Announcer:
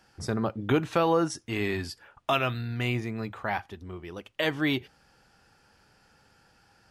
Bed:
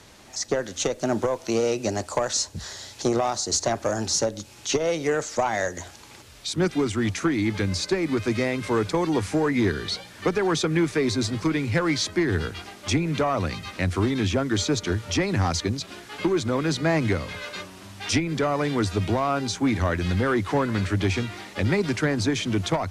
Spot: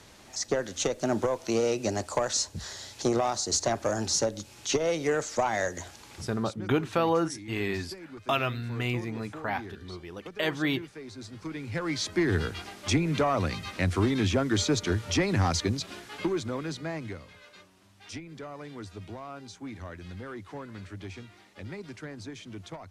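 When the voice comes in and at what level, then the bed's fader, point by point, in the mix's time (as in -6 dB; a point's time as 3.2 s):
6.00 s, -1.5 dB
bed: 6.25 s -3 dB
6.61 s -20 dB
11.07 s -20 dB
12.26 s -2 dB
15.95 s -2 dB
17.33 s -17.5 dB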